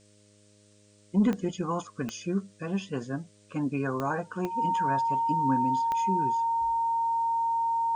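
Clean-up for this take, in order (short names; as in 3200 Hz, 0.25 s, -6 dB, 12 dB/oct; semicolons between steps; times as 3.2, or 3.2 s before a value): de-click; de-hum 103.2 Hz, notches 6; notch 920 Hz, Q 30; expander -52 dBFS, range -21 dB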